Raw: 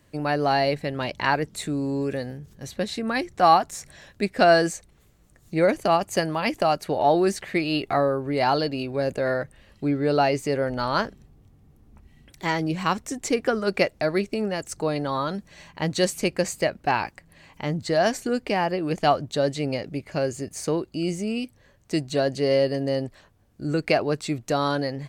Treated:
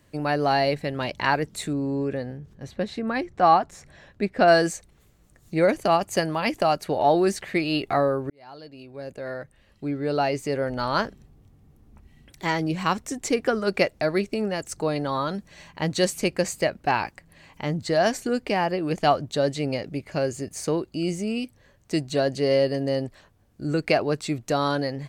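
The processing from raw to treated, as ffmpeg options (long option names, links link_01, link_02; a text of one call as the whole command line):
ffmpeg -i in.wav -filter_complex "[0:a]asettb=1/sr,asplit=3[link_01][link_02][link_03];[link_01]atrim=end=1.734[link_04];[link_02]atrim=start=1.73:end=4.48,asetpts=PTS-STARTPTS,afade=type=in:duration=0.004:curve=qsin,afade=type=out:start_time=2.746:duration=0.004:curve=qsin,lowpass=frequency=2000:poles=1[link_05];[link_03]atrim=start=4.476[link_06];[link_04][link_05]acrossfade=duration=0.004:curve1=hsin:curve2=qsin[link_07];[link_07][link_06]acrossfade=duration=0.004:curve1=qsin:curve2=hsin,asplit=2[link_08][link_09];[link_08]atrim=end=8.3,asetpts=PTS-STARTPTS,afade=type=out:start_time=8.296:duration=0.004:curve=hsin[link_10];[link_09]atrim=start=8.3,asetpts=PTS-STARTPTS,afade=type=in:duration=2.72[link_11];[link_10][link_11]concat=n=2:v=0:a=1" out.wav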